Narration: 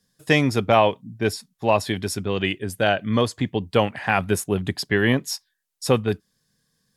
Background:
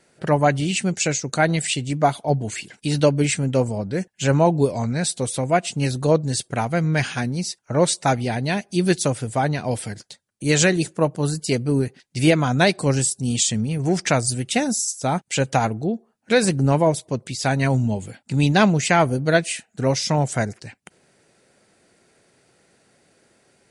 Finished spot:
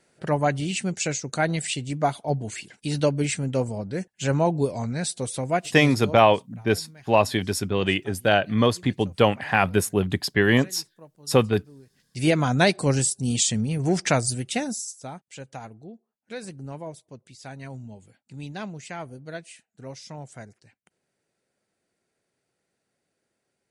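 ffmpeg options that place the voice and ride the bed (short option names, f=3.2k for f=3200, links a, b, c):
-filter_complex "[0:a]adelay=5450,volume=0.5dB[a];[1:a]volume=21.5dB,afade=t=out:st=5.54:d=0.68:silence=0.0668344,afade=t=in:st=11.89:d=0.54:silence=0.0473151,afade=t=out:st=14.14:d=1.04:silence=0.141254[b];[a][b]amix=inputs=2:normalize=0"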